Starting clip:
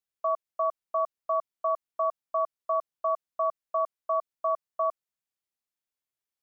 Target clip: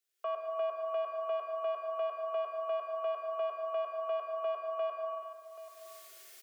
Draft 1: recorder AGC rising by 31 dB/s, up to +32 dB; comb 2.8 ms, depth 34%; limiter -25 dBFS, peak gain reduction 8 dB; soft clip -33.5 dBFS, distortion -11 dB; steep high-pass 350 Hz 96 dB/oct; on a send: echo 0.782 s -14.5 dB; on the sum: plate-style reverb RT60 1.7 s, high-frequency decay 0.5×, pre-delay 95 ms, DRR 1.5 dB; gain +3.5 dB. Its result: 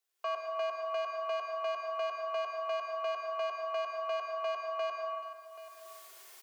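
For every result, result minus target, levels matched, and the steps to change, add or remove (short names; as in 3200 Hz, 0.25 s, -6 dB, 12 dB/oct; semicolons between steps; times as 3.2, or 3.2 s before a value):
soft clip: distortion +13 dB; 1000 Hz band +2.0 dB
change: soft clip -24 dBFS, distortion -24 dB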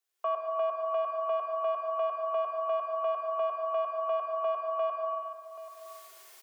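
1000 Hz band +2.5 dB
add after steep high-pass: bell 940 Hz -15 dB 0.51 oct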